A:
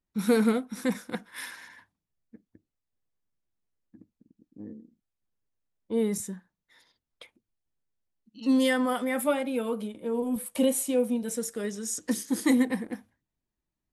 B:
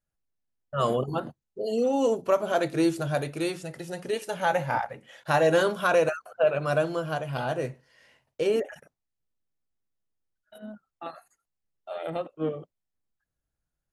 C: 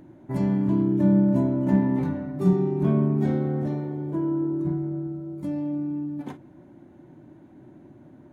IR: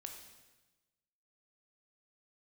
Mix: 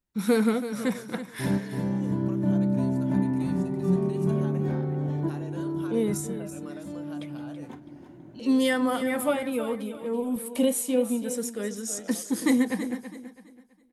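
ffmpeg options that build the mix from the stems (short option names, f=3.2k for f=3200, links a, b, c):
-filter_complex "[0:a]volume=0.5dB,asplit=2[a][b];[b]volume=-11.5dB[c];[1:a]highshelf=f=4.4k:g=8.5,acompressor=threshold=-28dB:ratio=6,volume=-15dB,asplit=3[d][e][f];[e]volume=-21dB[g];[2:a]adelay=1100,volume=-1dB,asplit=2[h][i];[i]volume=-4dB[j];[f]apad=whole_len=415802[k];[h][k]sidechaincompress=threshold=-58dB:ratio=8:attack=16:release=236[l];[c][g][j]amix=inputs=3:normalize=0,aecho=0:1:329|658|987|1316:1|0.3|0.09|0.027[m];[a][d][l][m]amix=inputs=4:normalize=0"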